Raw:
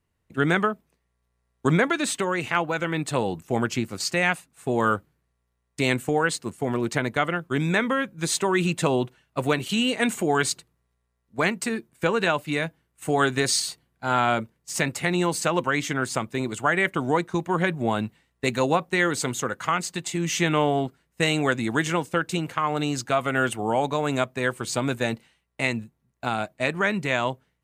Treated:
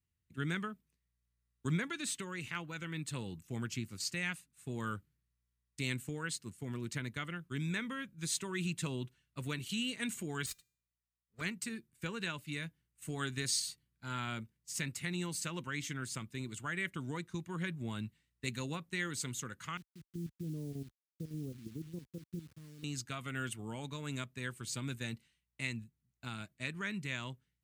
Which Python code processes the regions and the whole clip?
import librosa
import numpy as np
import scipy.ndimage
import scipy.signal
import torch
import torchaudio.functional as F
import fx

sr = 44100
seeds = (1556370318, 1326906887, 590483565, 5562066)

y = fx.chain(x, sr, fx.lower_of_two(delay_ms=1.6),
    fx.low_shelf(hz=170.0, db=-8.0),
    fx.comb_fb(f0_hz=400.0, decay_s=0.52, harmonics='all', damping=0.0, mix_pct=40), at=(10.46, 11.41))
y = fx.chain(y, sr, fx.cheby2_lowpass(hz=2800.0, order=4, stop_db=80),
    fx.level_steps(step_db=13),
    fx.quant_dither(seeds[0], bits=8, dither='none'), at=(19.77, 22.84))
y = scipy.signal.sosfilt(scipy.signal.butter(2, 49.0, 'highpass', fs=sr, output='sos'), y)
y = fx.tone_stack(y, sr, knobs='6-0-2')
y = fx.notch(y, sr, hz=760.0, q=12.0)
y = y * 10.0 ** (5.0 / 20.0)